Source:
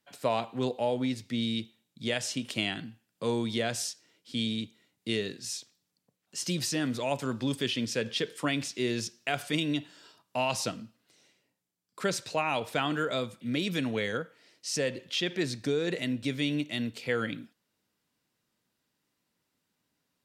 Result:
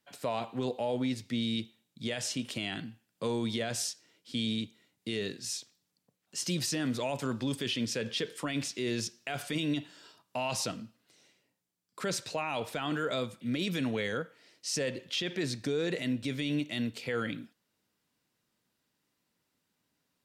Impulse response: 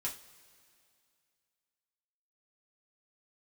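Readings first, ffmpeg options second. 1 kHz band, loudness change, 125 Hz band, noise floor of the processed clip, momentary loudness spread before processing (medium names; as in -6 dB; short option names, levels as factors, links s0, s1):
-4.0 dB, -2.5 dB, -1.5 dB, -81 dBFS, 8 LU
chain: -af "alimiter=limit=0.0708:level=0:latency=1:release=14"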